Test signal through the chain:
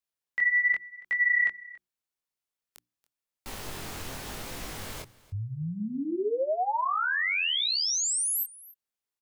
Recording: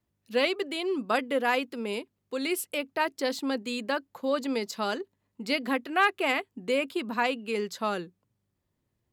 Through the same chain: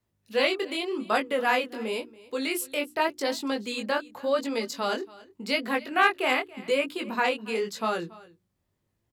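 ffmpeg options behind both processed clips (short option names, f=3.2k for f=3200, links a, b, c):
-filter_complex "[0:a]flanger=delay=17.5:depth=6.4:speed=0.88,acrossover=split=420[a][b];[a]alimiter=level_in=9.5dB:limit=-24dB:level=0:latency=1,volume=-9.5dB[c];[c][b]amix=inputs=2:normalize=0,bandreject=f=60:t=h:w=6,bandreject=f=120:t=h:w=6,bandreject=f=180:t=h:w=6,bandreject=f=240:t=h:w=6,bandreject=f=300:t=h:w=6,bandreject=f=360:t=h:w=6,aecho=1:1:281:0.0891,volume=5dB"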